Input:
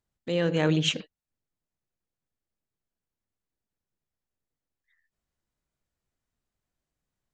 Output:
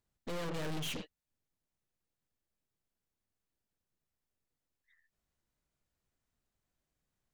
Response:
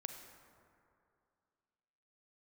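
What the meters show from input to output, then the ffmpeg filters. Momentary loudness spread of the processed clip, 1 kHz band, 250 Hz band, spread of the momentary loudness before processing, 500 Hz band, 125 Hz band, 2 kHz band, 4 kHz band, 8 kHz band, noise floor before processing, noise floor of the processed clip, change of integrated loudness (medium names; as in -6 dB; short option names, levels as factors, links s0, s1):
6 LU, -7.5 dB, -15.0 dB, 8 LU, -14.5 dB, -14.5 dB, -12.0 dB, -13.0 dB, -9.0 dB, under -85 dBFS, under -85 dBFS, -13.5 dB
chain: -af "aeval=exprs='(tanh(126*val(0)+0.75)-tanh(0.75))/126':c=same,volume=1.58"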